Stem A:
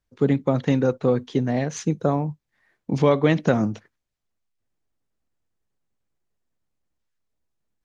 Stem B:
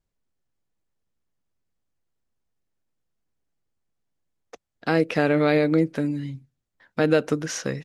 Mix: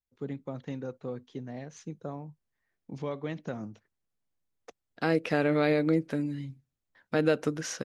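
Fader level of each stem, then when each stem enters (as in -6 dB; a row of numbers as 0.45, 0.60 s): -17.0, -5.5 dB; 0.00, 0.15 s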